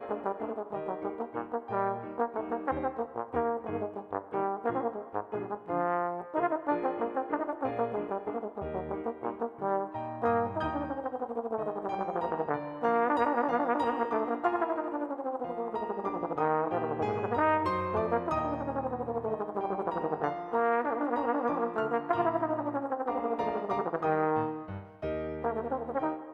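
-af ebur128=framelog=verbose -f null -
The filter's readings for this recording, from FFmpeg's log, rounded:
Integrated loudness:
  I:         -32.0 LUFS
  Threshold: -42.0 LUFS
Loudness range:
  LRA:         3.7 LU
  Threshold: -51.9 LUFS
  LRA low:   -33.9 LUFS
  LRA high:  -30.1 LUFS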